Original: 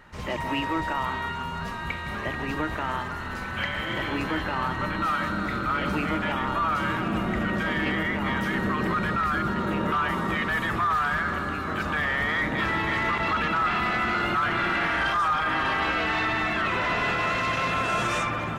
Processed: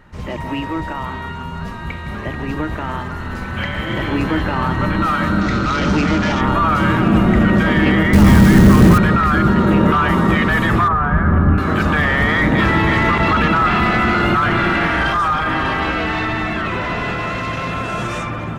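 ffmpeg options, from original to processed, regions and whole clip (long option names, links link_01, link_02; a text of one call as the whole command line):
ffmpeg -i in.wav -filter_complex "[0:a]asettb=1/sr,asplit=3[link_01][link_02][link_03];[link_01]atrim=end=5.414[link_04];[link_02]atrim=start=5.41:end=6.41,asetpts=PTS-STARTPTS,afade=type=in:duration=0.004:curve=qsin,afade=type=out:start_time=0.996:duration=0.004:curve=qsin,asoftclip=type=hard:threshold=-24.5dB,lowpass=frequency=6000:width_type=q:width=2.4[link_05];[link_03]atrim=start=6.406[link_06];[link_04][link_05]acrossfade=duration=0.004:curve1=hsin:curve2=qsin[link_07];[link_07][link_06]acrossfade=duration=0.004:curve1=qsin:curve2=hsin,asettb=1/sr,asplit=3[link_08][link_09][link_10];[link_08]atrim=end=8.134[link_11];[link_09]atrim=start=8.13:end=8.98,asetpts=PTS-STARTPTS,afade=type=in:duration=0.004:curve=qsin,afade=type=out:start_time=0.846:duration=0.004:curve=qsin,lowshelf=frequency=230:gain=12,acrusher=bits=6:dc=4:mix=0:aa=0.000001,asoftclip=type=hard:threshold=-18.5dB[link_12];[link_10]atrim=start=8.976[link_13];[link_11][link_12]acrossfade=duration=0.004:curve1=hsin:curve2=qsin[link_14];[link_14][link_13]acrossfade=duration=0.004:curve1=qsin:curve2=hsin,asettb=1/sr,asplit=3[link_15][link_16][link_17];[link_15]atrim=end=10.884[link_18];[link_16]atrim=start=10.88:end=11.58,asetpts=PTS-STARTPTS,afade=type=in:duration=0.004:curve=qsin,afade=type=out:start_time=0.696:duration=0.004:curve=qsin,lowpass=1300,asubboost=boost=10.5:cutoff=220[link_19];[link_17]atrim=start=11.576[link_20];[link_18][link_19]acrossfade=duration=0.004:curve1=hsin:curve2=qsin[link_21];[link_21][link_20]acrossfade=duration=0.004:curve1=qsin:curve2=hsin,lowshelf=frequency=440:gain=9,dynaudnorm=framelen=500:gausssize=17:maxgain=11.5dB" out.wav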